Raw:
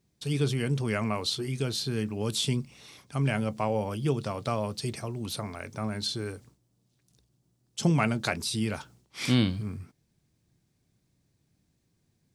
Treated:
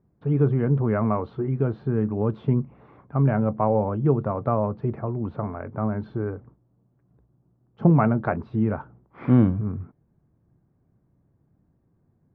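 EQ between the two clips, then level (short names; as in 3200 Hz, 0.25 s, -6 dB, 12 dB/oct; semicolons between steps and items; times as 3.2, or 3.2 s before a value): LPF 1300 Hz 24 dB/oct; +7.0 dB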